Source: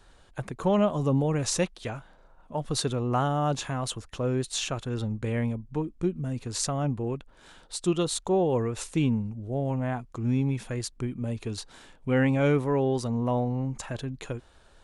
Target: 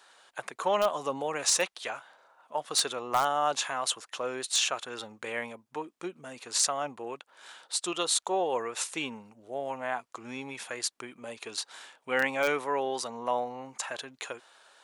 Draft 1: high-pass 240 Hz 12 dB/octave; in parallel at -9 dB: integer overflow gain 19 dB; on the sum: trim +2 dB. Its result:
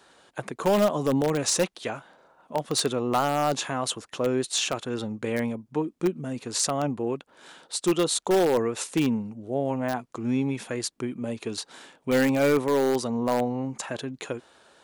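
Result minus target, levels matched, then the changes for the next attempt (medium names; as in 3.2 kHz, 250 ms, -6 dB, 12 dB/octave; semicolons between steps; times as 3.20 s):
250 Hz band +11.0 dB
change: high-pass 770 Hz 12 dB/octave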